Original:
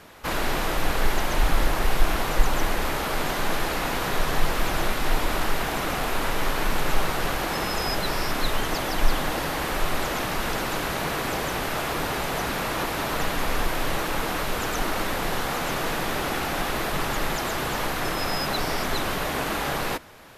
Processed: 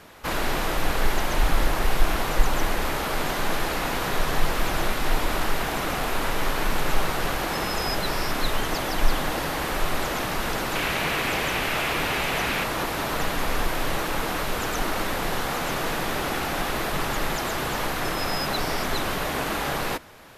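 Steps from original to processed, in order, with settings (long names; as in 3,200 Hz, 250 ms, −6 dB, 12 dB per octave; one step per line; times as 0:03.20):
0:10.75–0:12.64: parametric band 2,500 Hz +8 dB 0.95 octaves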